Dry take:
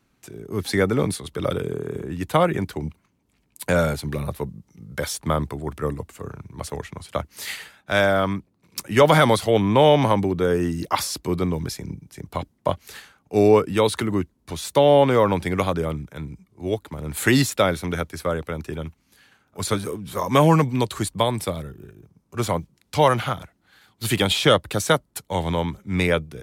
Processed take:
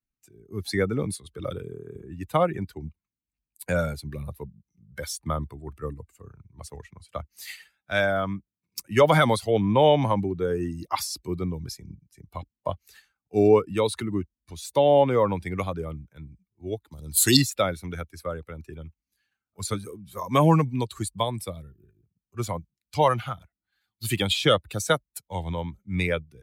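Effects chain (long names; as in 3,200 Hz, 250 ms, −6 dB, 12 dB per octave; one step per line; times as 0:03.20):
spectral dynamics exaggerated over time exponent 1.5
0:16.91–0:17.37: high shelf with overshoot 3,000 Hz +12 dB, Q 3
level −1 dB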